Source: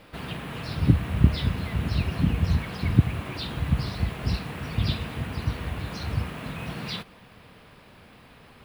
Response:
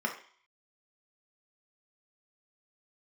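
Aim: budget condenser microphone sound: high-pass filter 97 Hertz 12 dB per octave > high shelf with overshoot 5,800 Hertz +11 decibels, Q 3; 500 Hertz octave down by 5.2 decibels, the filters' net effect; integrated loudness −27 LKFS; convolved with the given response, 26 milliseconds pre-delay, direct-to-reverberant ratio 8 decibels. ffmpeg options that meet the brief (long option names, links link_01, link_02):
-filter_complex "[0:a]equalizer=frequency=500:width_type=o:gain=-7,asplit=2[link_01][link_02];[1:a]atrim=start_sample=2205,adelay=26[link_03];[link_02][link_03]afir=irnorm=-1:irlink=0,volume=-15dB[link_04];[link_01][link_04]amix=inputs=2:normalize=0,highpass=97,highshelf=frequency=5800:width_type=q:width=3:gain=11,volume=2.5dB"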